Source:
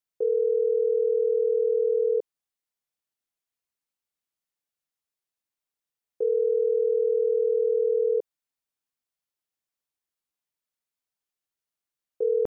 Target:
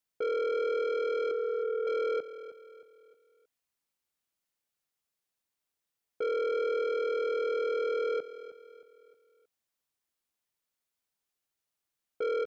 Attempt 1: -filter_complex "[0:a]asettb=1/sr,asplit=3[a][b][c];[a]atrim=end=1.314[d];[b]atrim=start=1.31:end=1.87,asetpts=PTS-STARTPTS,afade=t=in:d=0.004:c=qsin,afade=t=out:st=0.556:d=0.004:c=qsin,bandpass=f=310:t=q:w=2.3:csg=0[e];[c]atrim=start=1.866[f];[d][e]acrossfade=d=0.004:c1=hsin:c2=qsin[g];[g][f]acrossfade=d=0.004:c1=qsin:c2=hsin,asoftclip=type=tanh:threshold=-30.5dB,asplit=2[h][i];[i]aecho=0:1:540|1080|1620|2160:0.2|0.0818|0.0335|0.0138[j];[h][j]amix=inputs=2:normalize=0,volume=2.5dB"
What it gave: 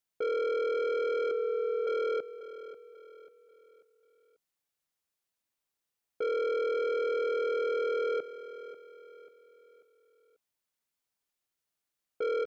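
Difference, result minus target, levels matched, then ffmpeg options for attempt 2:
echo 0.227 s late
-filter_complex "[0:a]asettb=1/sr,asplit=3[a][b][c];[a]atrim=end=1.314[d];[b]atrim=start=1.31:end=1.87,asetpts=PTS-STARTPTS,afade=t=in:d=0.004:c=qsin,afade=t=out:st=0.556:d=0.004:c=qsin,bandpass=f=310:t=q:w=2.3:csg=0[e];[c]atrim=start=1.866[f];[d][e]acrossfade=d=0.004:c1=hsin:c2=qsin[g];[g][f]acrossfade=d=0.004:c1=qsin:c2=hsin,asoftclip=type=tanh:threshold=-30.5dB,asplit=2[h][i];[i]aecho=0:1:313|626|939|1252:0.2|0.0818|0.0335|0.0138[j];[h][j]amix=inputs=2:normalize=0,volume=2.5dB"

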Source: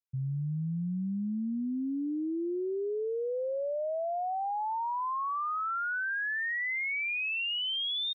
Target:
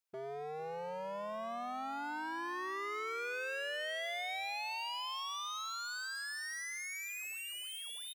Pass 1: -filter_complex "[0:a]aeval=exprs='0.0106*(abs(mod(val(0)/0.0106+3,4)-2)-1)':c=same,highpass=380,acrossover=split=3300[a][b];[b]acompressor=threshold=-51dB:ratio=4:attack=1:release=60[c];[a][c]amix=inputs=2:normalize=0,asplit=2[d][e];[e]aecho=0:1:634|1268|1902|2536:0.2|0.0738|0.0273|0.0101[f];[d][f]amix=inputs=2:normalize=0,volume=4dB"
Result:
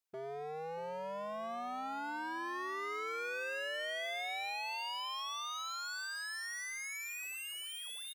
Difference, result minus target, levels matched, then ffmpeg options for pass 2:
echo 0.182 s late
-filter_complex "[0:a]aeval=exprs='0.0106*(abs(mod(val(0)/0.0106+3,4)-2)-1)':c=same,highpass=380,acrossover=split=3300[a][b];[b]acompressor=threshold=-51dB:ratio=4:attack=1:release=60[c];[a][c]amix=inputs=2:normalize=0,asplit=2[d][e];[e]aecho=0:1:452|904|1356|1808:0.2|0.0738|0.0273|0.0101[f];[d][f]amix=inputs=2:normalize=0,volume=4dB"

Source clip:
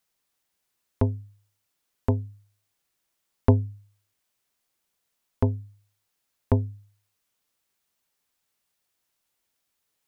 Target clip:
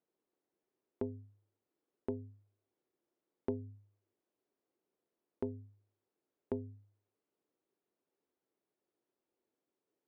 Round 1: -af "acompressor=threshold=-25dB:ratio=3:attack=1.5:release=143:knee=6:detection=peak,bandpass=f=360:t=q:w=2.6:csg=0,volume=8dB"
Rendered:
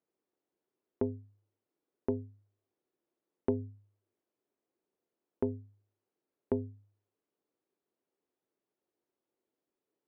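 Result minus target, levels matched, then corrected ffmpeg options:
compressor: peak gain reduction -6.5 dB
-af "acompressor=threshold=-34.5dB:ratio=3:attack=1.5:release=143:knee=6:detection=peak,bandpass=f=360:t=q:w=2.6:csg=0,volume=8dB"

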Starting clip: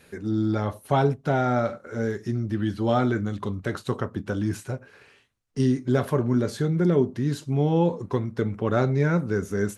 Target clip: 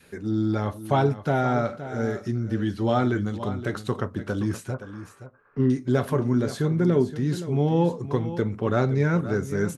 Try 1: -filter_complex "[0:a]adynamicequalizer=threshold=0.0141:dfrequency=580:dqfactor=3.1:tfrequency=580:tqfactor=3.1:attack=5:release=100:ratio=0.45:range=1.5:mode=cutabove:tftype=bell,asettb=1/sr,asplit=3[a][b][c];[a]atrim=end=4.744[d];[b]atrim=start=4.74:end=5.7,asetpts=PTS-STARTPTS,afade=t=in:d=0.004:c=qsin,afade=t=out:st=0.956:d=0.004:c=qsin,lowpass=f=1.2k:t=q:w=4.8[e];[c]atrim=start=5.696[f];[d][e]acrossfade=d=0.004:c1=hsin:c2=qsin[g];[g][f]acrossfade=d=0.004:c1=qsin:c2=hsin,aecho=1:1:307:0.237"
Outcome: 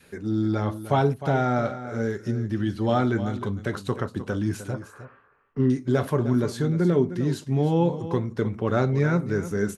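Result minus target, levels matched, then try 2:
echo 0.213 s early
-filter_complex "[0:a]adynamicequalizer=threshold=0.0141:dfrequency=580:dqfactor=3.1:tfrequency=580:tqfactor=3.1:attack=5:release=100:ratio=0.45:range=1.5:mode=cutabove:tftype=bell,asettb=1/sr,asplit=3[a][b][c];[a]atrim=end=4.744[d];[b]atrim=start=4.74:end=5.7,asetpts=PTS-STARTPTS,afade=t=in:d=0.004:c=qsin,afade=t=out:st=0.956:d=0.004:c=qsin,lowpass=f=1.2k:t=q:w=4.8[e];[c]atrim=start=5.696[f];[d][e]acrossfade=d=0.004:c1=hsin:c2=qsin[g];[g][f]acrossfade=d=0.004:c1=qsin:c2=hsin,aecho=1:1:520:0.237"

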